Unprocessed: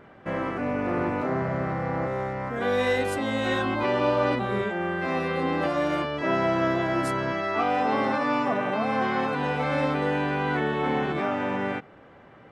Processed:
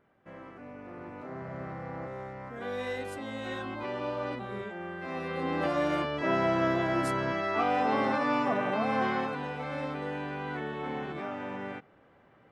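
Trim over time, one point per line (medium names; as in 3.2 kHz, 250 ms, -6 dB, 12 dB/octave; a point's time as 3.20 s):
0.97 s -18 dB
1.62 s -11 dB
5.00 s -11 dB
5.70 s -3 dB
9.08 s -3 dB
9.50 s -10 dB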